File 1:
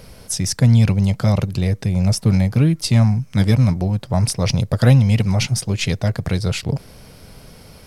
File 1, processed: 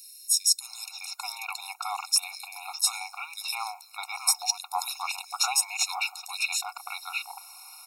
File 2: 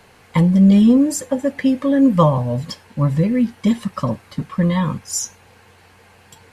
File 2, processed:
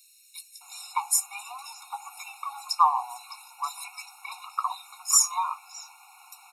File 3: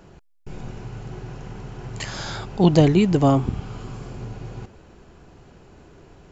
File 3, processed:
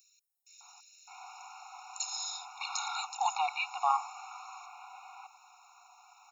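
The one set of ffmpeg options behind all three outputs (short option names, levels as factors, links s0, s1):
-filter_complex "[0:a]acrossover=split=230|3500[s0][s1][s2];[s0]adelay=300[s3];[s1]adelay=610[s4];[s3][s4][s2]amix=inputs=3:normalize=0,crystalizer=i=1.5:c=0,afftfilt=real='re*eq(mod(floor(b*sr/1024/720),2),1)':imag='im*eq(mod(floor(b*sr/1024/720),2),1)':win_size=1024:overlap=0.75"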